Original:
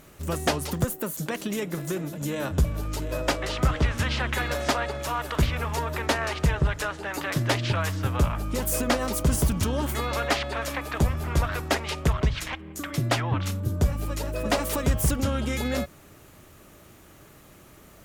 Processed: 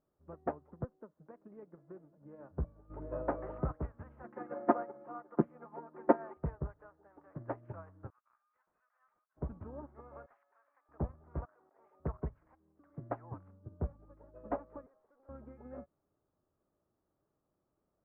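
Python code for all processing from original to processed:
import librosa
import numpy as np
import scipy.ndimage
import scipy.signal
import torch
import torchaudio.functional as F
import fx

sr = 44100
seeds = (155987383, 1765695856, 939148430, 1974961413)

y = fx.chain(x, sr, fx.high_shelf(hz=4100.0, db=-6.5),
    fx.env_flatten(amount_pct=50), at=(2.9, 3.72))
y = fx.chain(y, sr, fx.highpass_res(hz=250.0, q=2.8),
    fx.comb(ms=5.7, depth=0.75), at=(4.23, 6.37))
y = fx.chain(y, sr, fx.over_compress(threshold_db=-26.0, ratio=-0.5),
    fx.highpass(hz=1400.0, slope=24),
    fx.clip_hard(threshold_db=-28.5), at=(8.1, 9.37))
y = fx.chain(y, sr, fx.highpass(hz=1400.0, slope=12),
    fx.clip_hard(threshold_db=-23.5), at=(10.26, 10.89))
y = fx.chain(y, sr, fx.over_compress(threshold_db=-33.0, ratio=-1.0),
    fx.highpass(hz=410.0, slope=12), at=(11.45, 12.0))
y = fx.chain(y, sr, fx.highpass(hz=390.0, slope=24),
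    fx.tube_stage(drive_db=32.0, bias=0.7), at=(14.86, 15.29))
y = scipy.signal.sosfilt(scipy.signal.bessel(6, 820.0, 'lowpass', norm='mag', fs=sr, output='sos'), y)
y = fx.low_shelf(y, sr, hz=270.0, db=-9.0)
y = fx.upward_expand(y, sr, threshold_db=-38.0, expansion=2.5)
y = y * 10.0 ** (1.0 / 20.0)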